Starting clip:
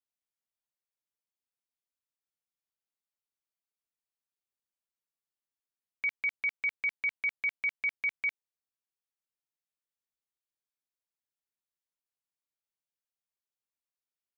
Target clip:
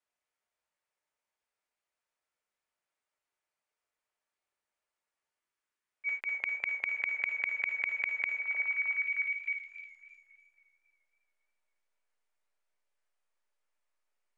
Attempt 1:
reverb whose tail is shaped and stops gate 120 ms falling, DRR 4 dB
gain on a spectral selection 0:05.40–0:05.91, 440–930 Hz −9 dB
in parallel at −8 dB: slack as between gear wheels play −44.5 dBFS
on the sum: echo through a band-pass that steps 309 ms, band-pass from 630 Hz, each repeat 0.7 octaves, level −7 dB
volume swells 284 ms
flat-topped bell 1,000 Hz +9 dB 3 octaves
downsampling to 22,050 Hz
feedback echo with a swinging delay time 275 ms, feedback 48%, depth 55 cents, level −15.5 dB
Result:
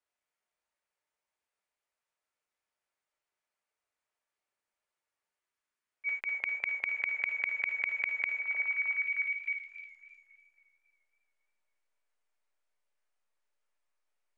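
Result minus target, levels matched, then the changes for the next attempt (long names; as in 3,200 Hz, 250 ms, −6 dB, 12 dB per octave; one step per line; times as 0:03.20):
slack as between gear wheels: distortion −6 dB
change: slack as between gear wheels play −38 dBFS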